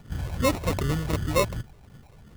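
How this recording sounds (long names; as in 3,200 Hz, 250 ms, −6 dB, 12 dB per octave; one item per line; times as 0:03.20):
phaser sweep stages 8, 2.7 Hz, lowest notch 260–1,200 Hz
aliases and images of a low sample rate 1,600 Hz, jitter 0%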